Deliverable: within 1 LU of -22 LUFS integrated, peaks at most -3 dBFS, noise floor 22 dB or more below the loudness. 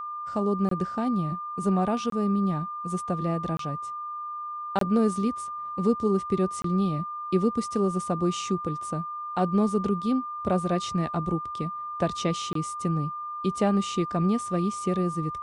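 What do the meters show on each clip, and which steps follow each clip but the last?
dropouts 6; longest dropout 23 ms; steady tone 1.2 kHz; tone level -32 dBFS; loudness -27.5 LUFS; peak level -12.5 dBFS; loudness target -22.0 LUFS
-> interpolate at 0.69/2.10/3.57/4.79/6.62/12.53 s, 23 ms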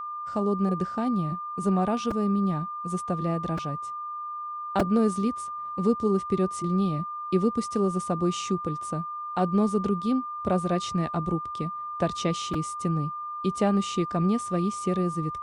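dropouts 0; steady tone 1.2 kHz; tone level -32 dBFS
-> band-stop 1.2 kHz, Q 30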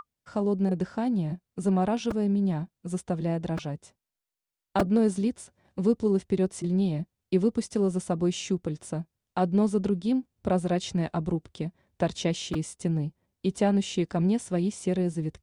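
steady tone not found; loudness -28.0 LUFS; peak level -12.5 dBFS; loudness target -22.0 LUFS
-> trim +6 dB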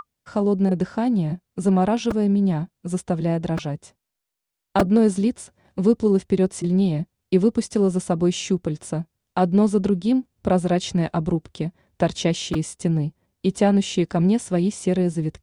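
loudness -22.0 LUFS; peak level -6.5 dBFS; noise floor -82 dBFS

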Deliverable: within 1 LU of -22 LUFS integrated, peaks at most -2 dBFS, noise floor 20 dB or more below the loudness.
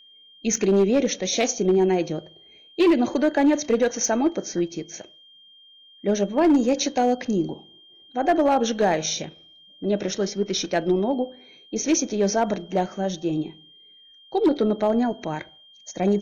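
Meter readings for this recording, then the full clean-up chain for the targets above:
clipped samples 1.0%; clipping level -13.0 dBFS; steady tone 3.2 kHz; tone level -49 dBFS; loudness -23.0 LUFS; peak level -13.0 dBFS; loudness target -22.0 LUFS
-> clip repair -13 dBFS; band-stop 3.2 kHz, Q 30; trim +1 dB

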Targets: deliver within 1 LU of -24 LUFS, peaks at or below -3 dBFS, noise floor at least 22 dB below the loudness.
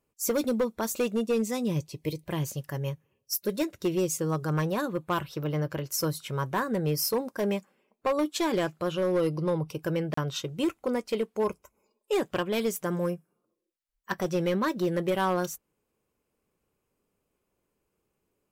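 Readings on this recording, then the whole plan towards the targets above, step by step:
clipped samples 1.0%; clipping level -20.5 dBFS; dropouts 1; longest dropout 34 ms; loudness -29.5 LUFS; peak level -20.5 dBFS; loudness target -24.0 LUFS
-> clip repair -20.5 dBFS; interpolate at 10.14 s, 34 ms; trim +5.5 dB

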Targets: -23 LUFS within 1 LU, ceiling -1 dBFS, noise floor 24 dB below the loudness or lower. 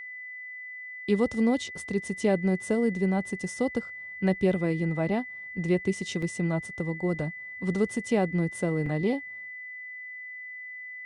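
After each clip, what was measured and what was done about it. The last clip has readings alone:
dropouts 2; longest dropout 3.9 ms; steady tone 2 kHz; tone level -38 dBFS; loudness -29.5 LUFS; peak level -13.5 dBFS; loudness target -23.0 LUFS
-> interpolate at 6.22/8.86 s, 3.9 ms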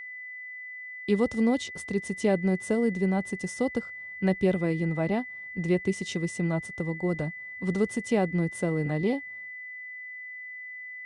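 dropouts 0; steady tone 2 kHz; tone level -38 dBFS
-> band-stop 2 kHz, Q 30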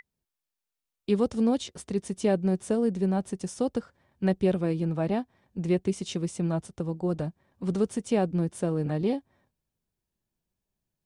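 steady tone not found; loudness -28.5 LUFS; peak level -13.0 dBFS; loudness target -23.0 LUFS
-> trim +5.5 dB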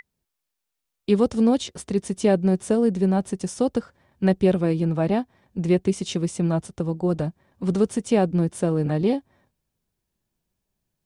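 loudness -23.0 LUFS; peak level -7.5 dBFS; noise floor -82 dBFS

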